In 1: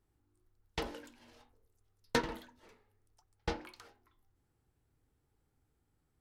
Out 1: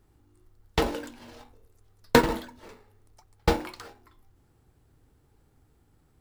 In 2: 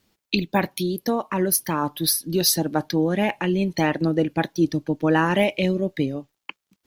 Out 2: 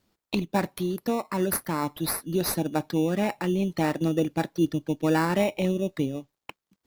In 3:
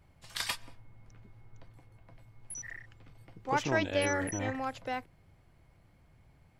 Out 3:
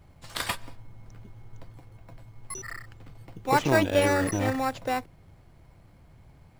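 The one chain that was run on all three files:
dynamic EQ 5300 Hz, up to -8 dB, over -45 dBFS, Q 1.4; in parallel at -5 dB: sample-and-hold 14×; on the sum: match loudness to -27 LUFS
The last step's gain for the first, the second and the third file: +10.5, -7.0, +4.5 dB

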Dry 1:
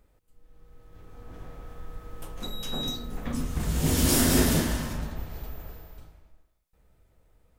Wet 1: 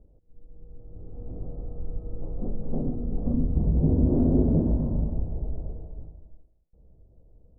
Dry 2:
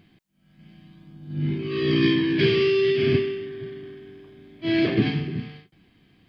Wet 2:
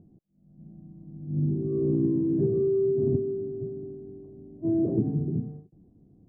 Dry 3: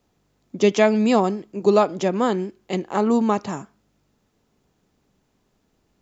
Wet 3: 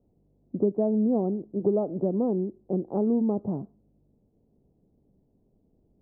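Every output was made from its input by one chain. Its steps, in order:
inverse Chebyshev low-pass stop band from 2900 Hz, stop band 70 dB; low shelf 490 Hz +6 dB; compressor 2.5:1, threshold -21 dBFS; match loudness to -27 LUFS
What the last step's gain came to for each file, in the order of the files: +2.0, -3.0, -3.0 dB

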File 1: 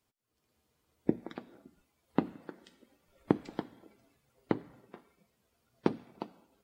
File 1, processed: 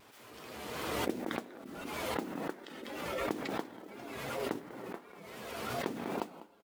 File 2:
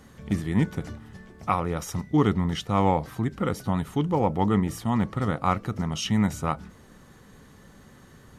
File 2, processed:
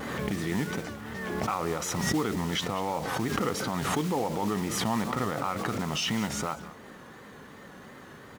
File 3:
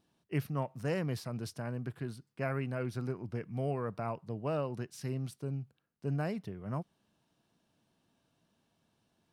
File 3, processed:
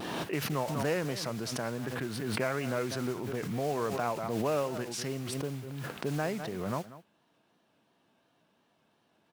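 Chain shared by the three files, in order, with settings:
in parallel at +3 dB: compressor, threshold -35 dBFS; on the sum: HPF 190 Hz 6 dB/oct; limiter -18 dBFS; modulation noise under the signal 14 dB; tone controls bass -5 dB, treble -10 dB; echo 0.194 s -16 dB; vibrato 2.8 Hz 71 cents; dynamic EQ 6400 Hz, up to +6 dB, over -57 dBFS, Q 0.86; backwards sustainer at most 27 dB/s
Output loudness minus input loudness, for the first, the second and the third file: -2.5, -4.0, +4.0 LU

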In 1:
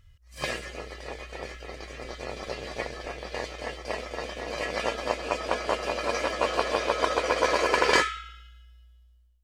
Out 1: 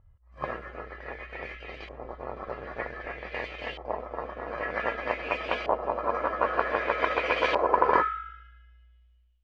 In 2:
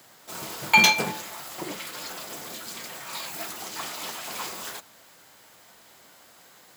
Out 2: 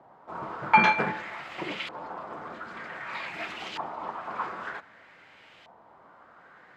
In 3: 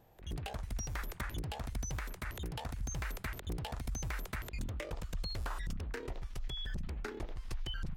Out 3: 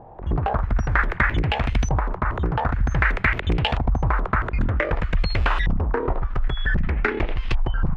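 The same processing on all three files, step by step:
LFO low-pass saw up 0.53 Hz 850–3000 Hz; normalise peaks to -6 dBFS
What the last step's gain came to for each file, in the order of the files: -3.0, -0.5, +17.5 dB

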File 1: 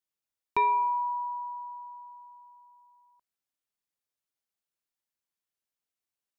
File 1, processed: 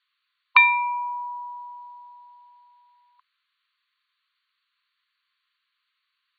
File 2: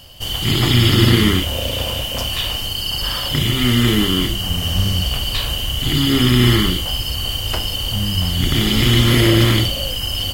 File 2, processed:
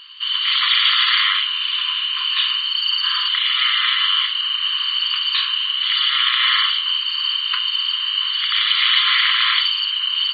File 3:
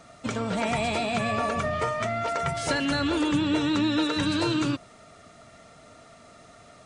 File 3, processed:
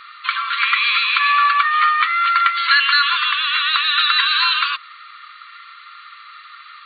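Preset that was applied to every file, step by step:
brick-wall FIR band-pass 1000–4600 Hz; normalise peaks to -1.5 dBFS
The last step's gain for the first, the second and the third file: +21.0, +4.0, +16.0 dB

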